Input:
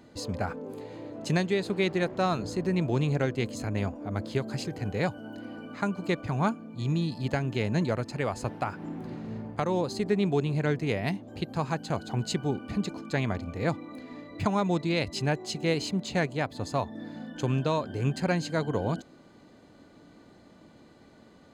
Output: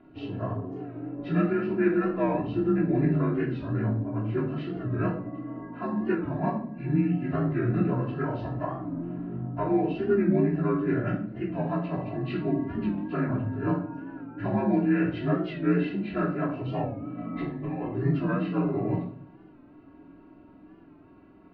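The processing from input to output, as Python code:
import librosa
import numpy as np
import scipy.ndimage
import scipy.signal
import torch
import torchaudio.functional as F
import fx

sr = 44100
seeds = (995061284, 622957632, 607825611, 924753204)

y = fx.partial_stretch(x, sr, pct=84)
y = scipy.signal.sosfilt(scipy.signal.butter(2, 2100.0, 'lowpass', fs=sr, output='sos'), y)
y = fx.low_shelf(y, sr, hz=150.0, db=5.0)
y = fx.over_compress(y, sr, threshold_db=-33.0, ratio=-1.0, at=(17.18, 17.89))
y = y + 0.4 * np.pad(y, (int(3.0 * sr / 1000.0), 0))[:len(y)]
y = fx.echo_feedback(y, sr, ms=108, feedback_pct=58, wet_db=-24.0)
y = fx.room_shoebox(y, sr, seeds[0], volume_m3=560.0, walls='furnished', distance_m=3.1)
y = fx.record_warp(y, sr, rpm=45.0, depth_cents=100.0)
y = y * 10.0 ** (-4.0 / 20.0)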